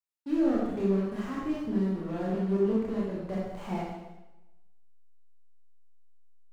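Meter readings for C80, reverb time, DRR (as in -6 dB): 2.5 dB, 1.0 s, -5.5 dB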